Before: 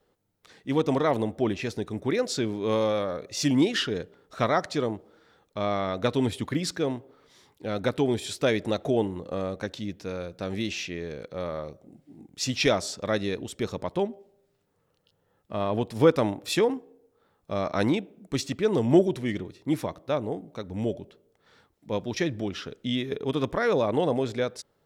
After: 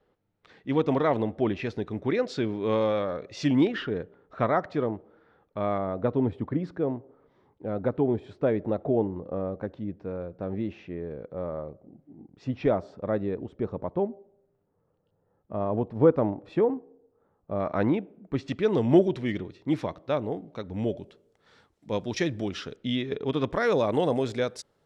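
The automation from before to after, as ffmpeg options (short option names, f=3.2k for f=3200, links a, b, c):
-af "asetnsamples=n=441:p=0,asendcmd='3.67 lowpass f 1700;5.78 lowpass f 1000;17.6 lowpass f 1700;18.48 lowpass f 4200;20.98 lowpass f 9200;22.76 lowpass f 4200;23.53 lowpass f 11000',lowpass=3k"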